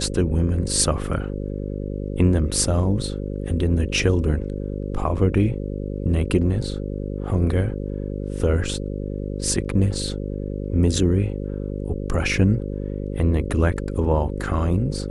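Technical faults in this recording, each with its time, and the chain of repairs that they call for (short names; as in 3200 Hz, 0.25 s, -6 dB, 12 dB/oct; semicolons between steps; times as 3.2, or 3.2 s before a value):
buzz 50 Hz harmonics 11 -28 dBFS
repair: de-hum 50 Hz, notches 11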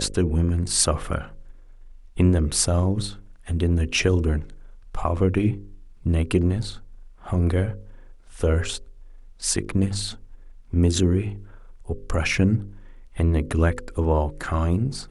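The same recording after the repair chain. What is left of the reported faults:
none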